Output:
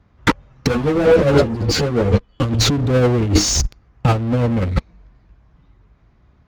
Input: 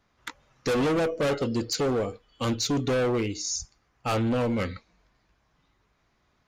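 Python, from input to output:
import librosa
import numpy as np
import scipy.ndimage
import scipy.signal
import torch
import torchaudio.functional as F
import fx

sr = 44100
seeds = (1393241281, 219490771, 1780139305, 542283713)

p1 = fx.fuzz(x, sr, gain_db=47.0, gate_db=-51.0)
p2 = x + (p1 * 10.0 ** (-3.5 / 20.0))
p3 = scipy.signal.sosfilt(scipy.signal.butter(2, 44.0, 'highpass', fs=sr, output='sos'), p2)
p4 = fx.riaa(p3, sr, side='playback')
p5 = fx.over_compress(p4, sr, threshold_db=-13.0, ratio=-0.5)
p6 = fx.ensemble(p5, sr, at=(0.68, 2.43))
y = p6 * 10.0 ** (1.0 / 20.0)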